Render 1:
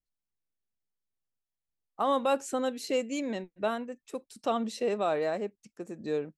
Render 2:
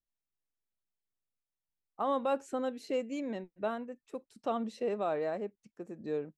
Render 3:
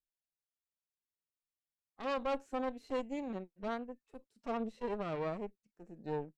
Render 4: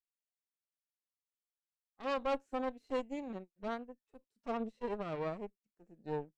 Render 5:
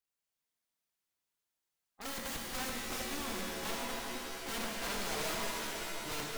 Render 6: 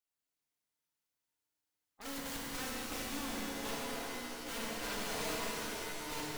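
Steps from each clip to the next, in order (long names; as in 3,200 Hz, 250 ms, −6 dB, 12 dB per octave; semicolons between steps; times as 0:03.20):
high-shelf EQ 3,200 Hz −11.5 dB; level −3.5 dB
harmonic generator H 6 −13 dB, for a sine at −20.5 dBFS; harmonic and percussive parts rebalanced percussive −12 dB; level −4 dB
expander for the loud parts 1.5 to 1, over −56 dBFS; level +1.5 dB
wrap-around overflow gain 40 dB; reverb with rising layers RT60 3.3 s, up +7 semitones, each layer −2 dB, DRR −1 dB; level +3 dB
feedback delay network reverb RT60 1.9 s, low-frequency decay 1.25×, high-frequency decay 0.75×, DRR 1 dB; level −4 dB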